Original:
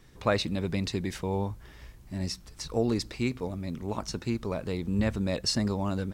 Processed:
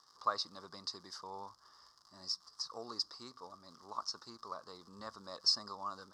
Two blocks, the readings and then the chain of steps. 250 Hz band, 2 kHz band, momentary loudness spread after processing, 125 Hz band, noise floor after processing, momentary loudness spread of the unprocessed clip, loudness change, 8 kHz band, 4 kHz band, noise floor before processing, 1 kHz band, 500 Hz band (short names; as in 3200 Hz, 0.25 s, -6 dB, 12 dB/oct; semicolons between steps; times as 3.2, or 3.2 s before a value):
-26.0 dB, -16.0 dB, 18 LU, -32.0 dB, -67 dBFS, 8 LU, -8.5 dB, -8.0 dB, -1.5 dB, -52 dBFS, -4.0 dB, -18.5 dB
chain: crackle 200/s -40 dBFS; double band-pass 2400 Hz, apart 2.1 oct; gain +3.5 dB